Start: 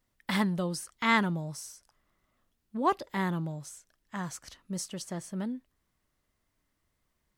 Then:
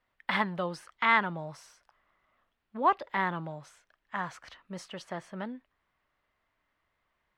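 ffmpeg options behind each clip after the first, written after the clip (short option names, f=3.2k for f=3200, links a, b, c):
-filter_complex "[0:a]acrossover=split=550 3300:gain=0.224 1 0.0631[a][b][c];[a][b][c]amix=inputs=3:normalize=0,asplit=2[d][e];[e]alimiter=limit=-23dB:level=0:latency=1:release=242,volume=1dB[f];[d][f]amix=inputs=2:normalize=0"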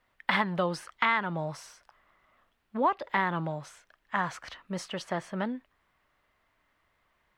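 -af "acompressor=threshold=-28dB:ratio=6,volume=6dB"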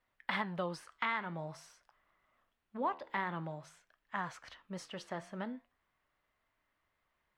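-af "flanger=delay=5.9:depth=8.2:regen=-82:speed=0.48:shape=triangular,volume=-4.5dB"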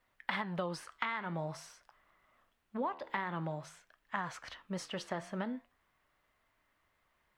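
-af "acompressor=threshold=-37dB:ratio=6,volume=5dB"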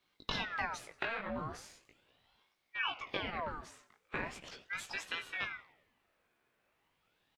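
-filter_complex "[0:a]flanger=delay=16.5:depth=3.8:speed=1.4,asplit=5[a][b][c][d][e];[b]adelay=91,afreqshift=120,volume=-21.5dB[f];[c]adelay=182,afreqshift=240,volume=-27.2dB[g];[d]adelay=273,afreqshift=360,volume=-32.9dB[h];[e]adelay=364,afreqshift=480,volume=-38.5dB[i];[a][f][g][h][i]amix=inputs=5:normalize=0,aeval=exprs='val(0)*sin(2*PI*1300*n/s+1300*0.7/0.39*sin(2*PI*0.39*n/s))':c=same,volume=4.5dB"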